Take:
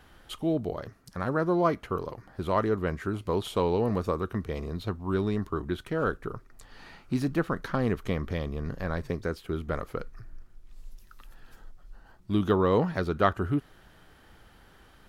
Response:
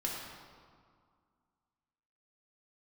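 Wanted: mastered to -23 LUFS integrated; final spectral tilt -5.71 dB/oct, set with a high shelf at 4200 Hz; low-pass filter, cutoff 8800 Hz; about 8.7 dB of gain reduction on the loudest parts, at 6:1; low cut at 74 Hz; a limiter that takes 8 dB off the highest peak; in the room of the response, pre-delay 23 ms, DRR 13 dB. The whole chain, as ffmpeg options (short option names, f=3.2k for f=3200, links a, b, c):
-filter_complex "[0:a]highpass=74,lowpass=8.8k,highshelf=f=4.2k:g=-6.5,acompressor=threshold=-28dB:ratio=6,alimiter=level_in=1dB:limit=-24dB:level=0:latency=1,volume=-1dB,asplit=2[a][b];[1:a]atrim=start_sample=2205,adelay=23[c];[b][c]afir=irnorm=-1:irlink=0,volume=-16.5dB[d];[a][d]amix=inputs=2:normalize=0,volume=14dB"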